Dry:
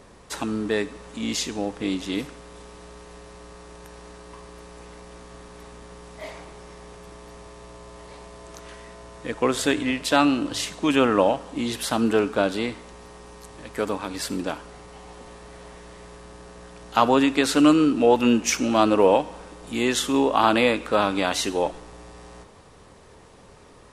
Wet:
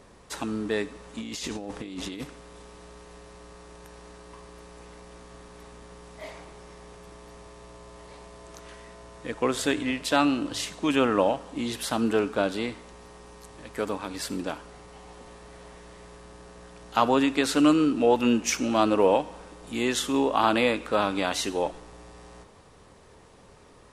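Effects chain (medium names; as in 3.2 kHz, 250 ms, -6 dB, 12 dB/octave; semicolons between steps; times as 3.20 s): 1.18–2.24 s: compressor with a negative ratio -32 dBFS, ratio -1; trim -3.5 dB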